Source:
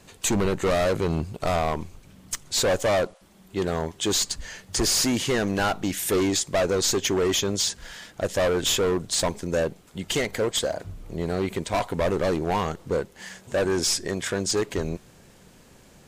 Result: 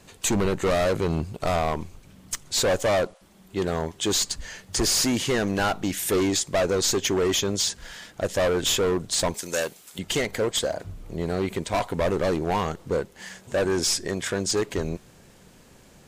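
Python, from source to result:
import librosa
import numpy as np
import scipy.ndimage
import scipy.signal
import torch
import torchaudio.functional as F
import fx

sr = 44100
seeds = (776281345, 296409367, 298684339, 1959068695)

y = fx.tilt_eq(x, sr, slope=4.0, at=(9.34, 9.99))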